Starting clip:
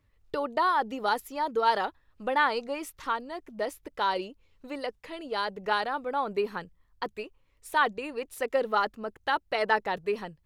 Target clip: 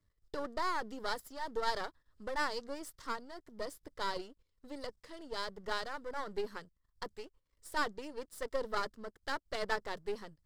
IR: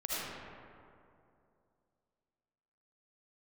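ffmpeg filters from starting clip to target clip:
-af "aeval=exprs='if(lt(val(0),0),0.251*val(0),val(0))':channel_layout=same,equalizer=frequency=800:width_type=o:width=0.33:gain=-7,equalizer=frequency=2500:width_type=o:width=0.33:gain=-11,equalizer=frequency=5000:width_type=o:width=0.33:gain=7,equalizer=frequency=8000:width_type=o:width=0.33:gain=6,volume=-5dB"

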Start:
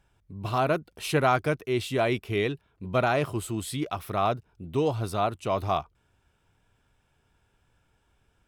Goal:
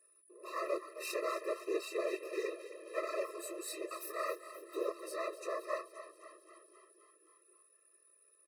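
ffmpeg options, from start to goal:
ffmpeg -i in.wav -filter_complex "[0:a]asettb=1/sr,asplit=3[link_01][link_02][link_03];[link_01]atrim=end=3.974[link_04];[link_02]atrim=start=3.97:end=4.75,asetpts=PTS-STARTPTS,afade=type=in:duration=0.004:curve=qsin,afade=type=out:start_time=0.776:duration=0.004:curve=qsin,aemphasis=mode=production:type=cd[link_05];[link_03]atrim=start=4.746[link_06];[link_04][link_05]acrossfade=duration=0.004:curve1=hsin:curve2=qsin[link_07];[link_07][link_06]acrossfade=duration=0.004:curve1=qsin:curve2=hsin,asplit=2[link_08][link_09];[link_09]acompressor=threshold=-32dB:ratio=6,volume=0.5dB[link_10];[link_08][link_10]amix=inputs=2:normalize=0,aeval=exprs='clip(val(0),-1,0.0335)':channel_layout=same,flanger=delay=16:depth=5:speed=0.58,aeval=exprs='val(0)+0.001*sin(2*PI*9900*n/s)':channel_layout=same,afftfilt=real='hypot(re,im)*cos(2*PI*random(0))':imag='hypot(re,im)*sin(2*PI*random(1))':win_size=512:overlap=0.75,asuperstop=centerf=3300:order=8:qfactor=5.5,asplit=2[link_11][link_12];[link_12]asplit=7[link_13][link_14][link_15][link_16][link_17][link_18][link_19];[link_13]adelay=262,afreqshift=38,volume=-13dB[link_20];[link_14]adelay=524,afreqshift=76,volume=-16.9dB[link_21];[link_15]adelay=786,afreqshift=114,volume=-20.8dB[link_22];[link_16]adelay=1048,afreqshift=152,volume=-24.6dB[link_23];[link_17]adelay=1310,afreqshift=190,volume=-28.5dB[link_24];[link_18]adelay=1572,afreqshift=228,volume=-32.4dB[link_25];[link_19]adelay=1834,afreqshift=266,volume=-36.3dB[link_26];[link_20][link_21][link_22][link_23][link_24][link_25][link_26]amix=inputs=7:normalize=0[link_27];[link_11][link_27]amix=inputs=2:normalize=0,afftfilt=real='re*eq(mod(floor(b*sr/1024/340),2),1)':imag='im*eq(mod(floor(b*sr/1024/340),2),1)':win_size=1024:overlap=0.75,volume=1dB" out.wav

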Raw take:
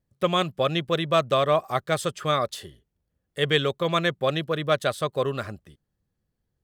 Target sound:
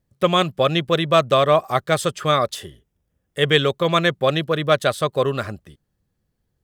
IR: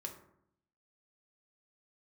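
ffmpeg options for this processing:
-filter_complex "[0:a]asettb=1/sr,asplit=3[link_01][link_02][link_03];[link_01]atrim=end=2.554[link_04];[link_02]atrim=start=2.55:end=3.55,asetpts=PTS-STARTPTS,afade=type=in:duration=0.004:curve=qsin,afade=type=out:start_time=0.996:duration=0.004:curve=qsin,bandreject=frequency=4300:width=6.4[link_05];[link_03]atrim=start=3.546[link_06];[link_04][link_05]acrossfade=duration=0.004:curve1=hsin:curve2=qsin[link_07];[link_07][link_06]acrossfade=duration=0.004:curve1=qsin:curve2=hsin,volume=5.5dB"

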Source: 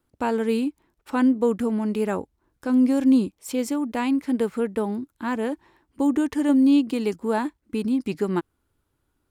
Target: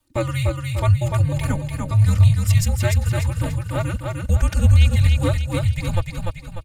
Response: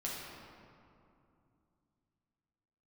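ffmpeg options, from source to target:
-filter_complex "[0:a]aecho=1:1:414|828|1242|1656|2070|2484:0.668|0.301|0.135|0.0609|0.0274|0.0123,acrossover=split=110|600|2200[link_01][link_02][link_03][link_04];[link_04]acontrast=68[link_05];[link_01][link_02][link_03][link_05]amix=inputs=4:normalize=0,atempo=1.4,aecho=1:1:3.2:0.9,afreqshift=-360"

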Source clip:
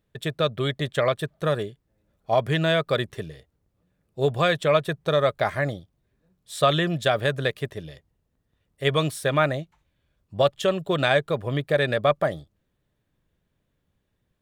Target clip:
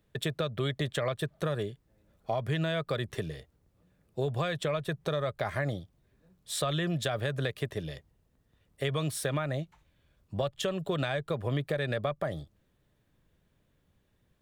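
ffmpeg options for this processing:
ffmpeg -i in.wav -filter_complex "[0:a]acrossover=split=130[link_01][link_02];[link_02]acompressor=threshold=-26dB:ratio=6[link_03];[link_01][link_03]amix=inputs=2:normalize=0,asplit=2[link_04][link_05];[link_05]alimiter=limit=-22dB:level=0:latency=1,volume=-1dB[link_06];[link_04][link_06]amix=inputs=2:normalize=0,acompressor=threshold=-31dB:ratio=1.5,volume=-2.5dB" out.wav

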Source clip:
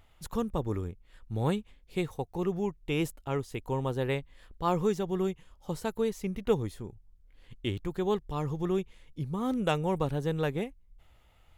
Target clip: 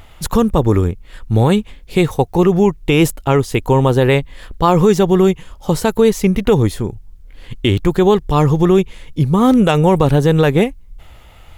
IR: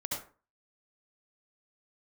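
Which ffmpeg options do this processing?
-af "alimiter=level_in=21dB:limit=-1dB:release=50:level=0:latency=1,volume=-1dB"

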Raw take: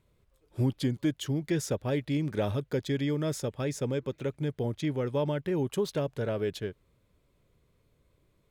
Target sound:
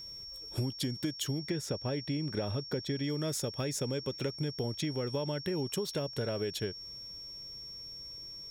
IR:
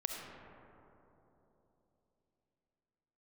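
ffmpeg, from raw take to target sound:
-af "asetnsamples=nb_out_samples=441:pad=0,asendcmd='1.39 highshelf g -3.5;3.04 highshelf g 8',highshelf=frequency=4200:gain=10,acompressor=threshold=-39dB:ratio=12,aeval=exprs='val(0)+0.00282*sin(2*PI*5500*n/s)':channel_layout=same,volume=8dB"

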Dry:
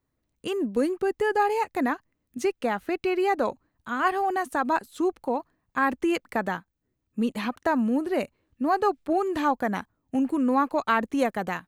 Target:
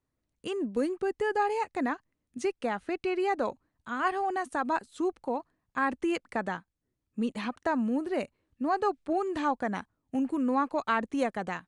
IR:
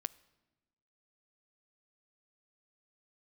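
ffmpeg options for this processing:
-af "aresample=22050,aresample=44100,volume=-4.5dB"

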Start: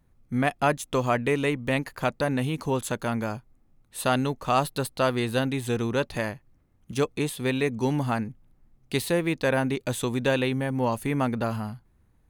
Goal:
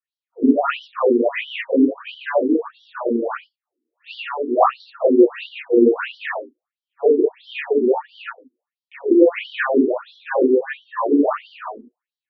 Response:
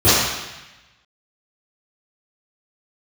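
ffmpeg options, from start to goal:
-filter_complex "[0:a]afwtdn=0.0178[link_01];[1:a]atrim=start_sample=2205,afade=type=out:start_time=0.21:duration=0.01,atrim=end_sample=9702[link_02];[link_01][link_02]afir=irnorm=-1:irlink=0,afftfilt=real='re*between(b*sr/1024,310*pow(4200/310,0.5+0.5*sin(2*PI*1.5*pts/sr))/1.41,310*pow(4200/310,0.5+0.5*sin(2*PI*1.5*pts/sr))*1.41)':imag='im*between(b*sr/1024,310*pow(4200/310,0.5+0.5*sin(2*PI*1.5*pts/sr))/1.41,310*pow(4200/310,0.5+0.5*sin(2*PI*1.5*pts/sr))*1.41)':win_size=1024:overlap=0.75,volume=-12.5dB"

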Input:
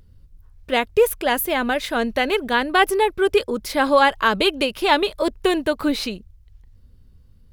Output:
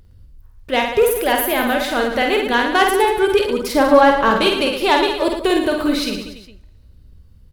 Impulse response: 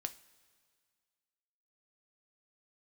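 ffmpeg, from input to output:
-filter_complex "[0:a]asoftclip=type=tanh:threshold=-7.5dB,asettb=1/sr,asplit=3[link_01][link_02][link_03];[link_01]atrim=end=3.744[link_04];[link_02]atrim=start=3.74:end=4.31,asetpts=PTS-STARTPTS,afade=type=in:duration=0.004:curve=qsin,afade=type=out:start_time=0.566:duration=0.004:curve=qsin,tiltshelf=frequency=1200:gain=6[link_05];[link_03]atrim=start=4.306[link_06];[link_04][link_05]acrossfade=duration=0.004:curve1=hsin:curve2=qsin[link_07];[link_07][link_06]acrossfade=duration=0.004:curve1=qsin:curve2=hsin,aecho=1:1:50|112.5|190.6|288.3|410.4:0.631|0.398|0.251|0.158|0.1,asplit=2[link_08][link_09];[1:a]atrim=start_sample=2205,asetrate=48510,aresample=44100[link_10];[link_09][link_10]afir=irnorm=-1:irlink=0,volume=-2dB[link_11];[link_08][link_11]amix=inputs=2:normalize=0,volume=-2dB"

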